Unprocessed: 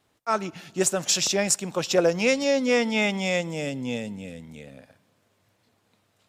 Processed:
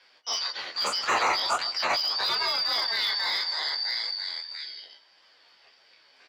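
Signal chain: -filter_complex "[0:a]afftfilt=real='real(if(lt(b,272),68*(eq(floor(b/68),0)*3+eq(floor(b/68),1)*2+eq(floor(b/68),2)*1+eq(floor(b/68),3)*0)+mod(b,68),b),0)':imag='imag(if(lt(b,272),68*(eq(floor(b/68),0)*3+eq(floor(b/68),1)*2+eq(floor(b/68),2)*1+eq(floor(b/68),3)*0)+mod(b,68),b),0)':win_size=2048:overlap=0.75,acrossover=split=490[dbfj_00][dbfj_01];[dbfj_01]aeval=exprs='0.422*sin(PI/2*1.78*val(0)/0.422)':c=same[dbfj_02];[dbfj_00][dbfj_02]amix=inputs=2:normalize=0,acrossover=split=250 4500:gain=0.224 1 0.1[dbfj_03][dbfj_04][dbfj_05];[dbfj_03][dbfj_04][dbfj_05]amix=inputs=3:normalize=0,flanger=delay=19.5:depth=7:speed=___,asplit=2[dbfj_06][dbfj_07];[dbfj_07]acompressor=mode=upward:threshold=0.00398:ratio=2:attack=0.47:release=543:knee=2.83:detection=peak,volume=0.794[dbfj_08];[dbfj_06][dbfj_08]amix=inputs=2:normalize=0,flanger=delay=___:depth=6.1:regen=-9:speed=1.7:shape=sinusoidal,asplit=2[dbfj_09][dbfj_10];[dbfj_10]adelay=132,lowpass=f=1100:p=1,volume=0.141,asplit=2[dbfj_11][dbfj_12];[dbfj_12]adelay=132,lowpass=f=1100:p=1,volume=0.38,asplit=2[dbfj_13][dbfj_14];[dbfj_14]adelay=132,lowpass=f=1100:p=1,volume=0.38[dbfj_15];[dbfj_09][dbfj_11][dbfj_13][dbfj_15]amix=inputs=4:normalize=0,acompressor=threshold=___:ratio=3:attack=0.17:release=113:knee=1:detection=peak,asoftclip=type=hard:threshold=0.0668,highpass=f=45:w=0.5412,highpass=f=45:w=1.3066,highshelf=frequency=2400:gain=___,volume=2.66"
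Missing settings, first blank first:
0.41, 8.6, 0.0501, -8.5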